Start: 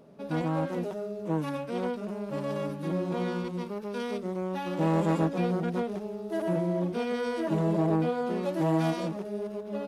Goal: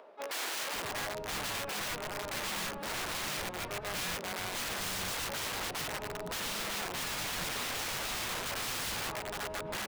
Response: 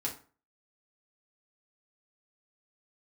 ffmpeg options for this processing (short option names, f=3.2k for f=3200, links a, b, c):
-filter_complex "[0:a]asplit=3[a][b][c];[b]asetrate=35002,aresample=44100,atempo=1.25992,volume=-9dB[d];[c]asetrate=66075,aresample=44100,atempo=0.66742,volume=-11dB[e];[a][d][e]amix=inputs=3:normalize=0,acrossover=split=550 3500:gain=0.224 1 0.158[f][g][h];[f][g][h]amix=inputs=3:normalize=0,asoftclip=type=tanh:threshold=-20.5dB,areverse,acompressor=mode=upward:threshold=-44dB:ratio=2.5,areverse,aeval=exprs='(mod(63.1*val(0)+1,2)-1)/63.1':c=same,acrossover=split=300[i][j];[i]adelay=540[k];[k][j]amix=inputs=2:normalize=0,volume=4.5dB"